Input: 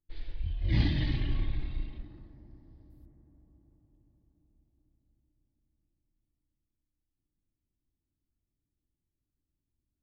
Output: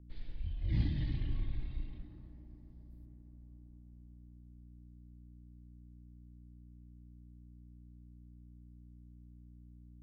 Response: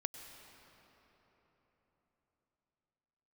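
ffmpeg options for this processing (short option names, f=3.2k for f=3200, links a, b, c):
-filter_complex "[0:a]asplit=2[a][b];[1:a]atrim=start_sample=2205[c];[b][c]afir=irnorm=-1:irlink=0,volume=-14dB[d];[a][d]amix=inputs=2:normalize=0,aeval=exprs='val(0)+0.00447*(sin(2*PI*60*n/s)+sin(2*PI*2*60*n/s)/2+sin(2*PI*3*60*n/s)/3+sin(2*PI*4*60*n/s)/4+sin(2*PI*5*60*n/s)/5)':c=same,acrossover=split=280[e][f];[f]acompressor=threshold=-58dB:ratio=1.5[g];[e][g]amix=inputs=2:normalize=0,volume=-6.5dB"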